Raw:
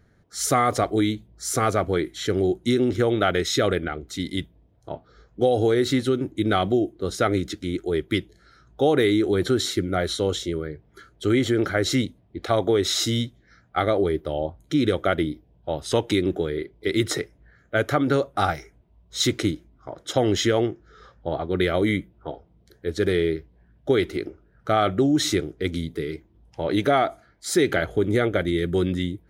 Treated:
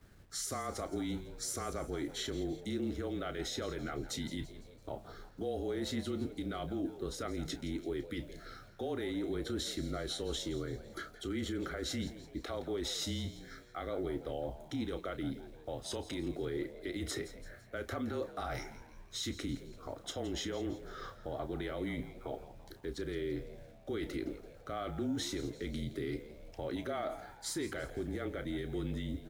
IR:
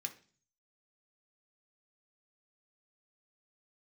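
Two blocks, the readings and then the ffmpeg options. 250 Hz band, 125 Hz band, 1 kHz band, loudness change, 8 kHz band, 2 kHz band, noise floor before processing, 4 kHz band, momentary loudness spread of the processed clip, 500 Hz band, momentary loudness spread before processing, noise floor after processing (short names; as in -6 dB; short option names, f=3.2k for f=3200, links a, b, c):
-14.5 dB, -15.0 dB, -18.0 dB, -15.5 dB, -12.0 dB, -16.5 dB, -60 dBFS, -13.0 dB, 8 LU, -16.5 dB, 13 LU, -56 dBFS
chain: -filter_complex "[0:a]agate=range=-33dB:threshold=-54dB:ratio=3:detection=peak,areverse,acompressor=threshold=-31dB:ratio=6,areverse,alimiter=level_in=8.5dB:limit=-24dB:level=0:latency=1:release=153,volume=-8.5dB,aeval=exprs='val(0)+0.000398*(sin(2*PI*60*n/s)+sin(2*PI*2*60*n/s)/2+sin(2*PI*3*60*n/s)/3+sin(2*PI*4*60*n/s)/4+sin(2*PI*5*60*n/s)/5)':c=same,acrusher=bits=11:mix=0:aa=0.000001,afreqshift=-28,asplit=2[a][b];[b]adelay=31,volume=-12dB[c];[a][c]amix=inputs=2:normalize=0,asplit=2[d][e];[e]asplit=4[f][g][h][i];[f]adelay=168,afreqshift=92,volume=-15dB[j];[g]adelay=336,afreqshift=184,volume=-21.4dB[k];[h]adelay=504,afreqshift=276,volume=-27.8dB[l];[i]adelay=672,afreqshift=368,volume=-34.1dB[m];[j][k][l][m]amix=inputs=4:normalize=0[n];[d][n]amix=inputs=2:normalize=0,volume=3.5dB"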